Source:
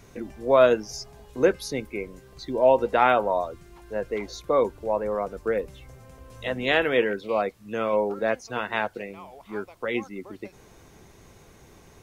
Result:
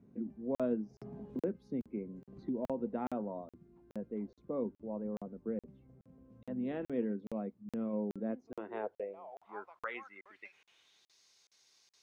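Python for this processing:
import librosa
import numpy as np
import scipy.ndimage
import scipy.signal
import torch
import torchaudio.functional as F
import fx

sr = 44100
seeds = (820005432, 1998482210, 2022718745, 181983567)

y = fx.filter_sweep_bandpass(x, sr, from_hz=220.0, to_hz=4700.0, start_s=8.22, end_s=11.16, q=3.4)
y = fx.buffer_crackle(y, sr, first_s=0.55, period_s=0.42, block=2048, kind='zero')
y = fx.band_squash(y, sr, depth_pct=70, at=(0.97, 2.81))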